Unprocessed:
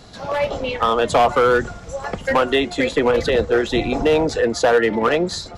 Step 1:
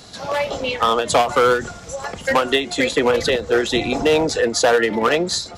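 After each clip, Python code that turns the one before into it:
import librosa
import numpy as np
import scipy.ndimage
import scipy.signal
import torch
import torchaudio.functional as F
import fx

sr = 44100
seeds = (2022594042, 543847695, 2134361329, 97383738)

y = fx.highpass(x, sr, hz=83.0, slope=6)
y = fx.high_shelf(y, sr, hz=3500.0, db=9.5)
y = fx.end_taper(y, sr, db_per_s=150.0)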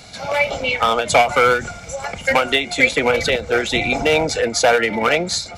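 y = fx.peak_eq(x, sr, hz=2300.0, db=12.5, octaves=0.22)
y = y + 0.4 * np.pad(y, (int(1.4 * sr / 1000.0), 0))[:len(y)]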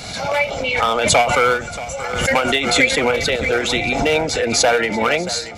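y = fx.echo_feedback(x, sr, ms=630, feedback_pct=40, wet_db=-15)
y = fx.pre_swell(y, sr, db_per_s=45.0)
y = F.gain(torch.from_numpy(y), -1.5).numpy()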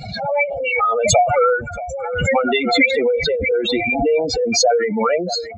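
y = fx.spec_expand(x, sr, power=3.2)
y = F.gain(torch.from_numpy(y), 1.0).numpy()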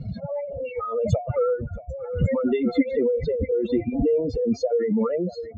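y = scipy.signal.lfilter(np.full(57, 1.0 / 57), 1.0, x)
y = F.gain(torch.from_numpy(y), 1.5).numpy()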